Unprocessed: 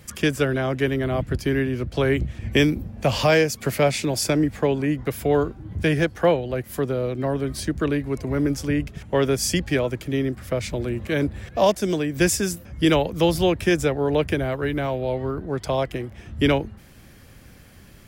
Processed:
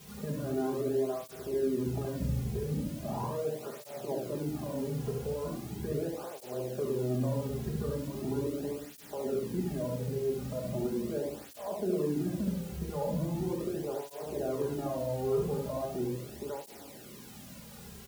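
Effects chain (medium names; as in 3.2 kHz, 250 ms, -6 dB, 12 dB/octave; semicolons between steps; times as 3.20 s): low-pass 1 kHz 24 dB/octave; bass shelf 180 Hz -8 dB; compressor with a negative ratio -27 dBFS, ratio -1; peak limiter -23 dBFS, peak gain reduction 9.5 dB; word length cut 8-bit, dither triangular; delay 72 ms -4 dB; reverberation RT60 0.80 s, pre-delay 5 ms, DRR -4 dB; cancelling through-zero flanger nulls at 0.39 Hz, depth 3.5 ms; trim -7 dB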